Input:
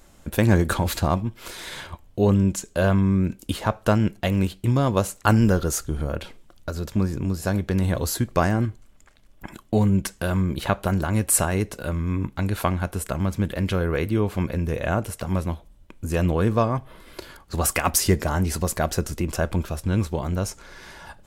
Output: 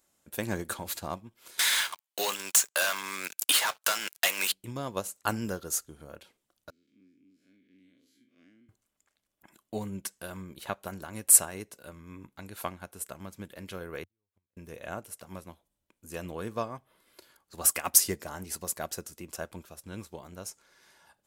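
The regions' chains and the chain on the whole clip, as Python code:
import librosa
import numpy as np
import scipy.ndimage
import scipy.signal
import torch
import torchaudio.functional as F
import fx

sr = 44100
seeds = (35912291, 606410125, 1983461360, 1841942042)

y = fx.chain(x, sr, fx.highpass(hz=1300.0, slope=12),
    fx.leveller(passes=5),
    fx.band_squash(depth_pct=70), at=(1.59, 4.52))
y = fx.chain(y, sr, fx.spec_blur(span_ms=108.0),
    fx.vowel_filter(vowel='i'),
    fx.low_shelf(hz=400.0, db=-4.5), at=(6.7, 8.69))
y = fx.chain(y, sr, fx.gate_flip(shuts_db=-17.0, range_db=-35),
    fx.peak_eq(hz=90.0, db=12.5, octaves=0.67),
    fx.upward_expand(threshold_db=-47.0, expansion=1.5), at=(14.03, 14.57))
y = fx.highpass(y, sr, hz=280.0, slope=6)
y = fx.high_shelf(y, sr, hz=5600.0, db=10.0)
y = fx.upward_expand(y, sr, threshold_db=-37.0, expansion=1.5)
y = F.gain(torch.from_numpy(y), -5.0).numpy()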